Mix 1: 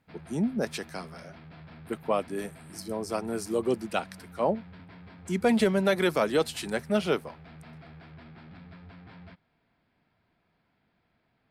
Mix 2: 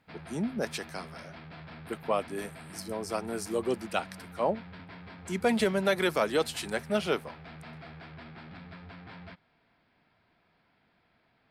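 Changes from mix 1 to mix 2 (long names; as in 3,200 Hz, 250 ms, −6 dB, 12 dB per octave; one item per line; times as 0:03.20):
background +5.5 dB
master: add low-shelf EQ 380 Hz −6 dB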